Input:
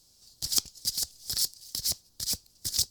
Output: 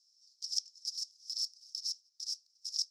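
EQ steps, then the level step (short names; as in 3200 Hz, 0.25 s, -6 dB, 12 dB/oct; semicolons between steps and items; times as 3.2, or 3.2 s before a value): band-pass 5400 Hz, Q 9.6; -1.0 dB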